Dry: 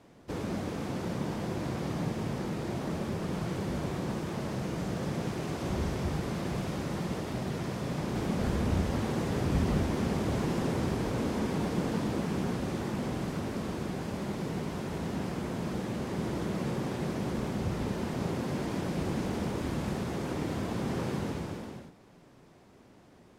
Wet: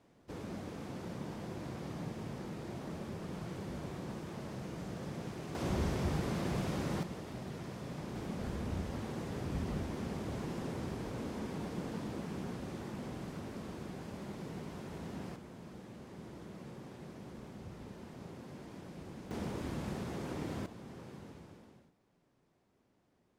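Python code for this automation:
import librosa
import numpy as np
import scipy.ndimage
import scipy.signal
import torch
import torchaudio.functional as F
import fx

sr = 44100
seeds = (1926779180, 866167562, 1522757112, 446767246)

y = fx.gain(x, sr, db=fx.steps((0.0, -9.0), (5.55, -2.0), (7.03, -9.5), (15.36, -16.0), (19.31, -6.5), (20.66, -17.0)))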